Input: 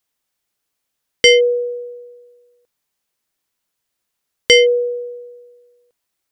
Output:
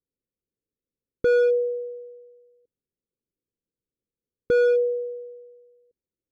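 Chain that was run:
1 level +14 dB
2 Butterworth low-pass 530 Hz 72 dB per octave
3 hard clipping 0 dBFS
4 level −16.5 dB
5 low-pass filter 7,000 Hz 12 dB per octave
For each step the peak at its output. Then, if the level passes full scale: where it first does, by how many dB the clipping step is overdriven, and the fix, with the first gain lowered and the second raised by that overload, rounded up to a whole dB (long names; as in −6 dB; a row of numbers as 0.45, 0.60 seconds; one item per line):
+11.0, +6.0, 0.0, −16.5, −16.5 dBFS
step 1, 6.0 dB
step 1 +8 dB, step 4 −10.5 dB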